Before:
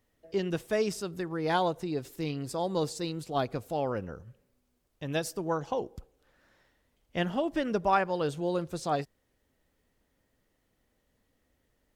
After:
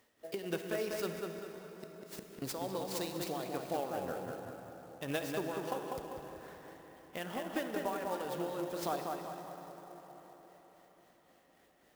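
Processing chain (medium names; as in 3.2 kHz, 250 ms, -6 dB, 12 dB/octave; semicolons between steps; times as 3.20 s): high-pass 220 Hz 6 dB/octave; bass shelf 320 Hz -6.5 dB; compression 12:1, threshold -42 dBFS, peak gain reduction 21.5 dB; 1.07–2.42 s: inverted gate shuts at -39 dBFS, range -27 dB; tremolo 3.7 Hz, depth 58%; feedback echo behind a low-pass 196 ms, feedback 44%, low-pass 3.2 kHz, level -4 dB; reverberation RT60 5.1 s, pre-delay 22 ms, DRR 6 dB; sampling jitter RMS 0.028 ms; trim +9.5 dB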